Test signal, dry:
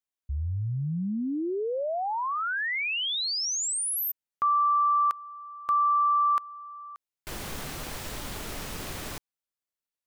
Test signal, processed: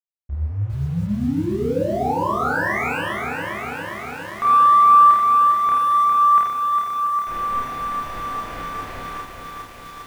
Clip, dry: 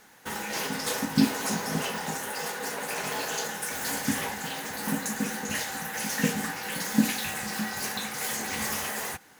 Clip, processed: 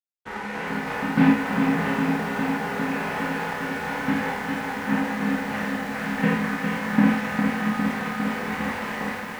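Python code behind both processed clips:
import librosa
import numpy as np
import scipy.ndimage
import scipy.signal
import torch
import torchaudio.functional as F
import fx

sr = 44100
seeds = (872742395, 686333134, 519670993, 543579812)

p1 = fx.envelope_flatten(x, sr, power=0.6)
p2 = scipy.signal.sosfilt(scipy.signal.butter(4, 2200.0, 'lowpass', fs=sr, output='sos'), p1)
p3 = np.sign(p2) * np.maximum(np.abs(p2) - 10.0 ** (-48.5 / 20.0), 0.0)
p4 = fx.doubler(p3, sr, ms=29.0, db=-2.0)
p5 = p4 + fx.echo_multitap(p4, sr, ms=(49, 53, 90, 188, 686), db=(-5.0, -6.5, -6.5, -18.5, -12.5), dry=0)
p6 = fx.echo_crushed(p5, sr, ms=405, feedback_pct=80, bits=8, wet_db=-5.5)
y = p6 * 10.0 ** (2.5 / 20.0)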